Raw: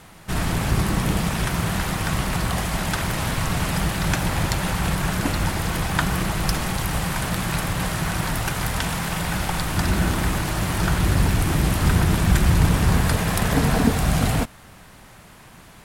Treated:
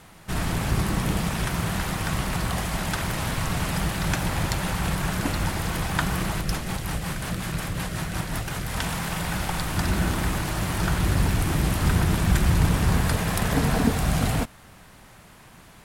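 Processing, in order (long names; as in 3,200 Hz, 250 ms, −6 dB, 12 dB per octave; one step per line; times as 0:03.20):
0:06.41–0:08.77: rotating-speaker cabinet horn 5.5 Hz
level −3 dB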